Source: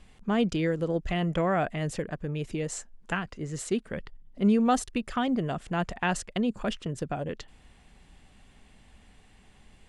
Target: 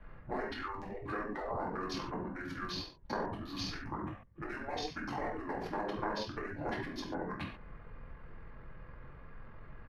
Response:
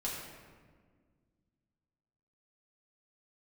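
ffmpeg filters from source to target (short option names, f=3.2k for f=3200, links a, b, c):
-filter_complex "[0:a]acrossover=split=590|4400[a][b][c];[c]aeval=exprs='sgn(val(0))*max(abs(val(0))-0.0015,0)':c=same[d];[a][b][d]amix=inputs=3:normalize=0,acrossover=split=320|1200[e][f][g];[e]acompressor=threshold=-33dB:ratio=4[h];[f]acompressor=threshold=-39dB:ratio=4[i];[g]acompressor=threshold=-44dB:ratio=4[j];[h][i][j]amix=inputs=3:normalize=0[k];[1:a]atrim=start_sample=2205,afade=t=out:st=0.33:d=0.01,atrim=end_sample=14994,asetrate=83790,aresample=44100[l];[k][l]afir=irnorm=-1:irlink=0,asetrate=26222,aresample=44100,atempo=1.68179,afftfilt=real='re*lt(hypot(re,im),0.0447)':imag='im*lt(hypot(re,im),0.0447)':win_size=1024:overlap=0.75,volume=9.5dB"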